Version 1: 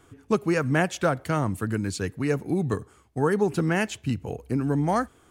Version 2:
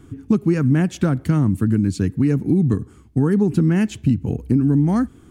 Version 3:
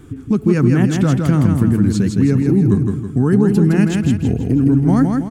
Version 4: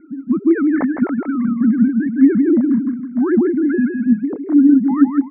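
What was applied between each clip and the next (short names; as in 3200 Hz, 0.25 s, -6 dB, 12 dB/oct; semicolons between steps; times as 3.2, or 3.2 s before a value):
resonant low shelf 390 Hz +12 dB, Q 1.5; compressor 2.5:1, threshold -18 dBFS, peak gain reduction 7.5 dB; gain +2 dB
limiter -11.5 dBFS, peak gain reduction 5 dB; wow and flutter 81 cents; feedback echo 0.162 s, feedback 44%, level -4 dB; gain +4.5 dB
sine-wave speech; rippled Chebyshev low-pass 2200 Hz, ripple 3 dB; gain +1 dB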